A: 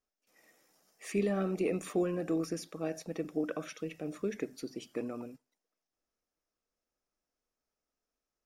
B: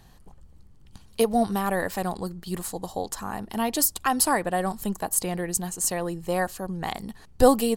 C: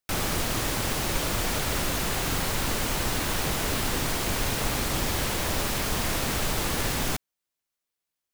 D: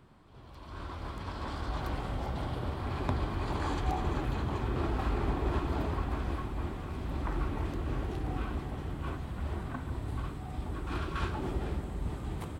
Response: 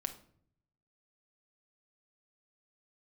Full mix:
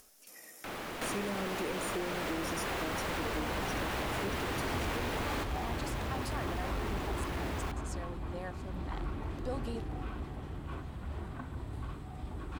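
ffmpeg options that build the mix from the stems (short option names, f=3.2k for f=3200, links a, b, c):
-filter_complex "[0:a]equalizer=f=11k:t=o:w=1.3:g=12.5,volume=1.5dB,asplit=2[a][b];[1:a]lowpass=5.9k,adelay=2050,volume=-16dB[c];[2:a]acrossover=split=210 3200:gain=0.224 1 0.224[d][e][f];[d][e][f]amix=inputs=3:normalize=0,adelay=550,volume=2dB[g];[3:a]adelay=1650,volume=-4dB[h];[b]apad=whole_len=392045[i];[g][i]sidechaingate=range=-11dB:threshold=-56dB:ratio=16:detection=peak[j];[a][c][j]amix=inputs=3:normalize=0,acompressor=threshold=-31dB:ratio=5,volume=0dB[k];[h][k]amix=inputs=2:normalize=0,acompressor=mode=upward:threshold=-43dB:ratio=2.5,asoftclip=type=tanh:threshold=-27dB"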